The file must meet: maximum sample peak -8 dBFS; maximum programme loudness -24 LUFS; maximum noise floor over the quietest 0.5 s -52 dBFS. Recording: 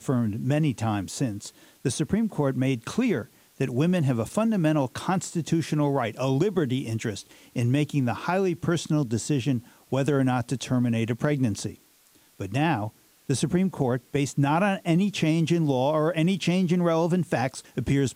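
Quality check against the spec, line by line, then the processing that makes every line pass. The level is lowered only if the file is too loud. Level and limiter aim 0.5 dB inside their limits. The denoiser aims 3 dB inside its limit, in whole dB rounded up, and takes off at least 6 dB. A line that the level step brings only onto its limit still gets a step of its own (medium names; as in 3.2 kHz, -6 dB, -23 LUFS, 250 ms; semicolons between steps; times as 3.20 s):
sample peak -10.5 dBFS: pass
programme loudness -25.5 LUFS: pass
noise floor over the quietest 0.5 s -59 dBFS: pass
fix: none needed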